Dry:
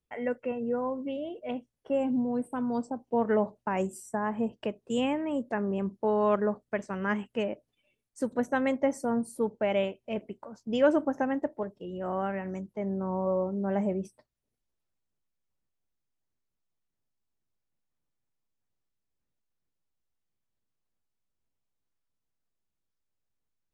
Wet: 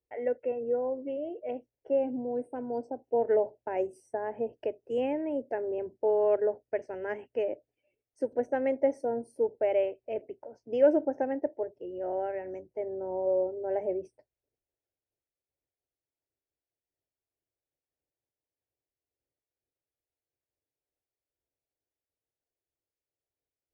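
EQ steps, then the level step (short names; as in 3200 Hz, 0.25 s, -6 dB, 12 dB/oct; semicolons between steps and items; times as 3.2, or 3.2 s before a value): running mean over 12 samples; HPF 130 Hz 6 dB/oct; fixed phaser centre 480 Hz, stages 4; +3.0 dB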